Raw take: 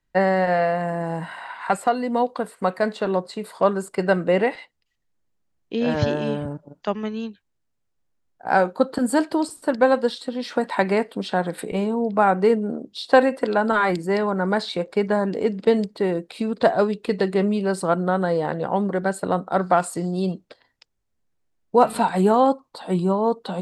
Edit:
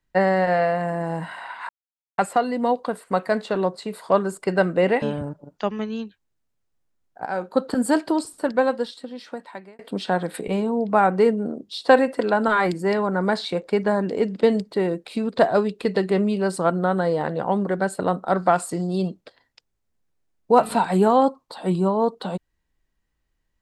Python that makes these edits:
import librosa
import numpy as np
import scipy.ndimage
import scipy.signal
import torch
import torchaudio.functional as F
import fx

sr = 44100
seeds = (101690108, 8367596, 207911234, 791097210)

y = fx.edit(x, sr, fx.insert_silence(at_s=1.69, length_s=0.49),
    fx.cut(start_s=4.53, length_s=1.73),
    fx.fade_in_from(start_s=8.5, length_s=0.38, floor_db=-16.0),
    fx.fade_out_span(start_s=9.42, length_s=1.61), tone=tone)